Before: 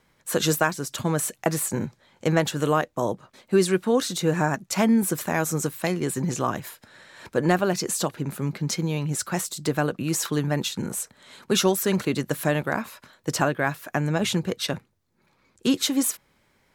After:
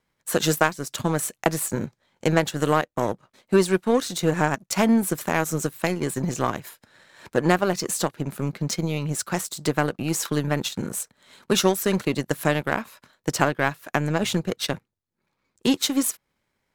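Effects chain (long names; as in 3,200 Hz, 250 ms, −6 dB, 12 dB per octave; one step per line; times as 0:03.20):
in parallel at +1.5 dB: downward compressor, threshold −31 dBFS, peak gain reduction 15.5 dB
on the sum: power curve on the samples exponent 1.4
level +2.5 dB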